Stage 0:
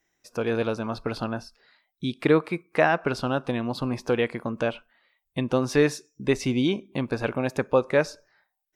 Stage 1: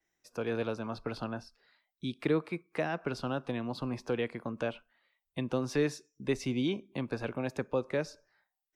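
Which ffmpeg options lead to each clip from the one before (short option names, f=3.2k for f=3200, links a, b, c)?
-filter_complex "[0:a]acrossover=split=180|440|3100[a][b][c][d];[c]alimiter=limit=-19dB:level=0:latency=1:release=233[e];[a][b][e][d]amix=inputs=4:normalize=0,adynamicequalizer=threshold=0.00282:dfrequency=7400:dqfactor=0.7:tfrequency=7400:tqfactor=0.7:attack=5:release=100:ratio=0.375:range=2.5:mode=cutabove:tftype=highshelf,volume=-7.5dB"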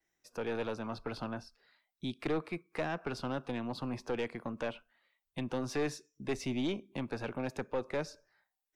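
-af "aeval=exprs='(tanh(22.4*val(0)+0.3)-tanh(0.3))/22.4':c=same"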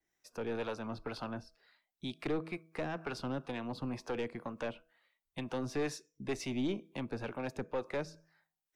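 -filter_complex "[0:a]acrossover=split=470[a][b];[a]aeval=exprs='val(0)*(1-0.5/2+0.5/2*cos(2*PI*2.1*n/s))':c=same[c];[b]aeval=exprs='val(0)*(1-0.5/2-0.5/2*cos(2*PI*2.1*n/s))':c=same[d];[c][d]amix=inputs=2:normalize=0,bandreject=f=161.8:t=h:w=4,bandreject=f=323.6:t=h:w=4,bandreject=f=485.4:t=h:w=4,bandreject=f=647.2:t=h:w=4,volume=1dB"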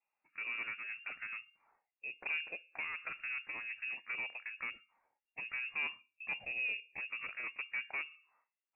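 -af "lowpass=f=2.4k:t=q:w=0.5098,lowpass=f=2.4k:t=q:w=0.6013,lowpass=f=2.4k:t=q:w=0.9,lowpass=f=2.4k:t=q:w=2.563,afreqshift=-2800,volume=-3.5dB"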